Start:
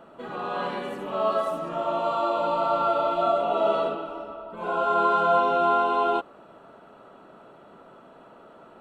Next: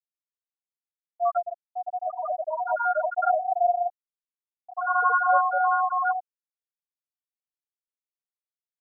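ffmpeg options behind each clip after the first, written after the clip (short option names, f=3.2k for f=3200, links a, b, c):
-filter_complex "[0:a]afreqshift=48,asplit=2[a][b];[b]adelay=897,lowpass=f=2k:p=1,volume=-12.5dB,asplit=2[c][d];[d]adelay=897,lowpass=f=2k:p=1,volume=0.52,asplit=2[e][f];[f]adelay=897,lowpass=f=2k:p=1,volume=0.52,asplit=2[g][h];[h]adelay=897,lowpass=f=2k:p=1,volume=0.52,asplit=2[i][j];[j]adelay=897,lowpass=f=2k:p=1,volume=0.52[k];[a][c][e][g][i][k]amix=inputs=6:normalize=0,afftfilt=real='re*gte(hypot(re,im),0.447)':imag='im*gte(hypot(re,im),0.447)':win_size=1024:overlap=0.75,volume=2.5dB"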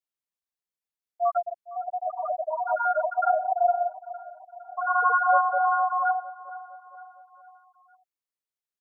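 -af "aecho=1:1:459|918|1377|1836:0.141|0.0706|0.0353|0.0177"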